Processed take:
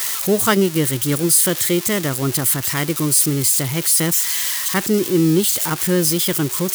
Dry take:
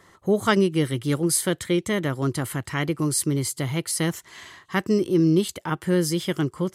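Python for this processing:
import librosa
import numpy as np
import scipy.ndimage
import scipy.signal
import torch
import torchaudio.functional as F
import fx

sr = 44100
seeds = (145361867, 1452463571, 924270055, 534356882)

y = x + 0.5 * 10.0 ** (-16.0 / 20.0) * np.diff(np.sign(x), prepend=np.sign(x[:1]))
y = y * 10.0 ** (3.5 / 20.0)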